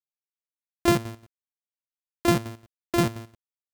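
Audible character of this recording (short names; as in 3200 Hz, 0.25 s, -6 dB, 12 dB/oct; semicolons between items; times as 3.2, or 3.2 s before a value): a buzz of ramps at a fixed pitch in blocks of 128 samples; chopped level 5.7 Hz, depth 65%, duty 55%; a quantiser's noise floor 12-bit, dither none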